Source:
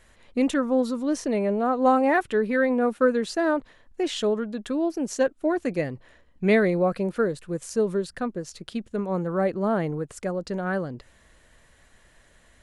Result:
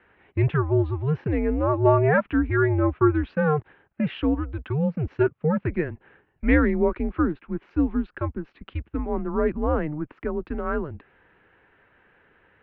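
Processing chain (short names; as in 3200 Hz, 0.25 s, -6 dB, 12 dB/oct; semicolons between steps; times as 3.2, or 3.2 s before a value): mistuned SSB -150 Hz 190–2800 Hz; gain +1.5 dB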